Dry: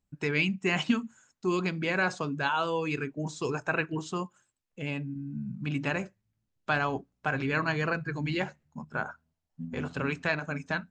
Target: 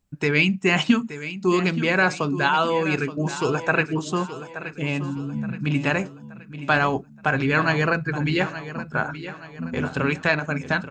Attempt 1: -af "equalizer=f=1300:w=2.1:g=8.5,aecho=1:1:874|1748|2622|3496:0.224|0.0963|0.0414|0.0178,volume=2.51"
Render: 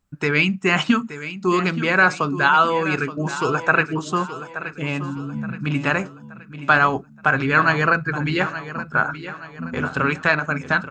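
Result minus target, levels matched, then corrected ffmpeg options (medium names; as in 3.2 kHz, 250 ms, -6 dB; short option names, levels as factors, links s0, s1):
1 kHz band +2.5 dB
-af "aecho=1:1:874|1748|2622|3496:0.224|0.0963|0.0414|0.0178,volume=2.51"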